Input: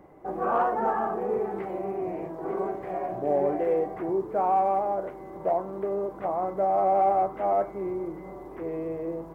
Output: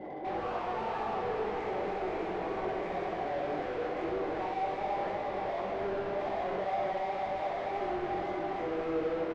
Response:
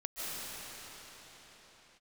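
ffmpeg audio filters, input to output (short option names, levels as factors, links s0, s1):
-filter_complex "[0:a]aexciter=amount=15.2:drive=2.1:freq=2300,alimiter=limit=0.0668:level=0:latency=1,asplit=2[s0][s1];[1:a]atrim=start_sample=2205,adelay=68[s2];[s1][s2]afir=irnorm=-1:irlink=0,volume=0.447[s3];[s0][s3]amix=inputs=2:normalize=0,afftfilt=real='re*gte(hypot(re,im),0.00398)':imag='im*gte(hypot(re,im),0.00398)':win_size=1024:overlap=0.75,asplit=2[s4][s5];[s5]highpass=f=720:p=1,volume=63.1,asoftclip=type=tanh:threshold=0.133[s6];[s4][s6]amix=inputs=2:normalize=0,lowpass=f=1900:p=1,volume=0.501,adynamicsmooth=sensitivity=1:basefreq=860,flanger=delay=18.5:depth=4.2:speed=1.9,aecho=1:1:64.14|271.1:0.562|0.316,volume=0.422"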